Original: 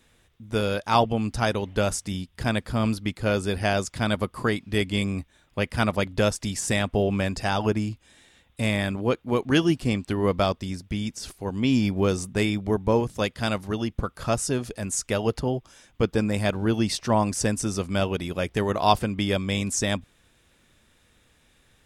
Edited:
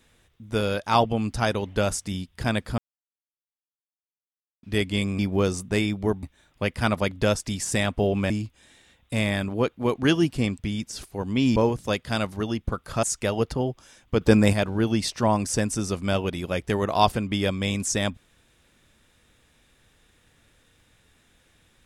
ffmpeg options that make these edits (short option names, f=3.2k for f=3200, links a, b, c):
-filter_complex "[0:a]asplit=11[a][b][c][d][e][f][g][h][i][j][k];[a]atrim=end=2.78,asetpts=PTS-STARTPTS,afade=t=out:st=2.776:d=0.004:c=hsin[l];[b]atrim=start=2.78:end=4.63,asetpts=PTS-STARTPTS,volume=0[m];[c]atrim=start=4.63:end=5.192,asetpts=PTS-STARTPTS,afade=t=in:d=0.004:c=hsin[n];[d]atrim=start=11.828:end=12.872[o];[e]atrim=start=5.188:end=7.262[p];[f]atrim=start=7.768:end=10.062[q];[g]atrim=start=10.858:end=11.832[r];[h]atrim=start=12.868:end=14.342[s];[i]atrim=start=14.898:end=16.082[t];[j]atrim=start=16.078:end=16.402,asetpts=PTS-STARTPTS,volume=7dB[u];[k]atrim=start=16.398[v];[l][m][n]concat=n=3:v=0:a=1[w];[w][o]acrossfade=d=0.004:c1=hsin:c2=hsin[x];[x][p]acrossfade=d=0.004:c1=hsin:c2=hsin[y];[y][q]acrossfade=d=0.004:c1=hsin:c2=hsin[z];[z][r]acrossfade=d=0.004:c1=hsin:c2=hsin[aa];[aa][s]acrossfade=d=0.004:c1=hsin:c2=hsin[ab];[ab][t]acrossfade=d=0.004:c1=hsin:c2=hsin[ac];[ac][u]acrossfade=d=0.004:c1=hsin:c2=hsin[ad];[ad][v]acrossfade=d=0.004:c1=hsin:c2=hsin"